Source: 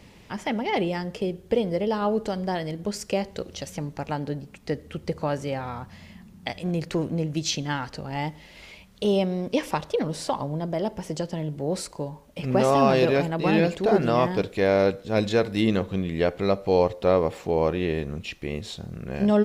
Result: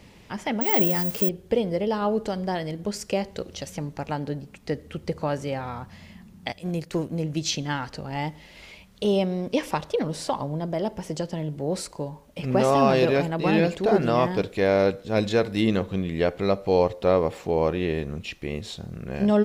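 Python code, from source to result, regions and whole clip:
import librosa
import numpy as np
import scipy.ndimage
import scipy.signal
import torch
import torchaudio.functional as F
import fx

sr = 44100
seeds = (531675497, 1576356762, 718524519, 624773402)

y = fx.chain(x, sr, fx.crossing_spikes(level_db=-30.5),
    fx.peak_eq(hz=200.0, db=4.0, octaves=0.81),
    fx.resample_bad(factor=2, down='none', up='zero_stuff'), at=(0.61, 1.29))
y = fx.chain(y, sr, fx.high_shelf(hz=6800.0, db=8.5),
    fx.upward_expand(threshold_db=-38.0, expansion=1.5), at=(6.52, 7.23))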